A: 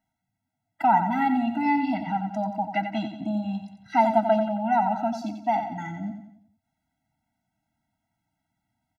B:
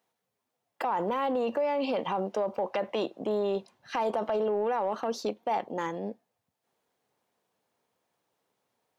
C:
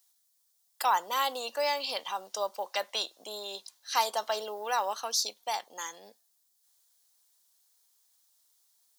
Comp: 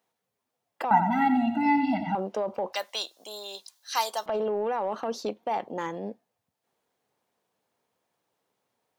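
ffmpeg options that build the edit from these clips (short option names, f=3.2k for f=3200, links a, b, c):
-filter_complex "[1:a]asplit=3[a][b][c];[a]atrim=end=0.912[d];[0:a]atrim=start=0.908:end=2.152[e];[b]atrim=start=2.148:end=2.732[f];[2:a]atrim=start=2.728:end=4.262[g];[c]atrim=start=4.258[h];[d][e]acrossfade=d=0.004:c1=hsin:c2=hsin[i];[i][f]acrossfade=d=0.004:c1=hsin:c2=hsin[j];[j][g]acrossfade=d=0.004:c1=hsin:c2=hsin[k];[k][h]acrossfade=d=0.004:c1=hsin:c2=hsin"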